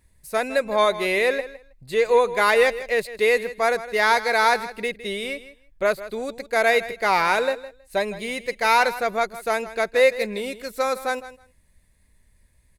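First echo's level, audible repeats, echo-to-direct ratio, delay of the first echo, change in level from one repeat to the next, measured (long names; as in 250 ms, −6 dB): −15.0 dB, 2, −15.0 dB, 160 ms, −16.5 dB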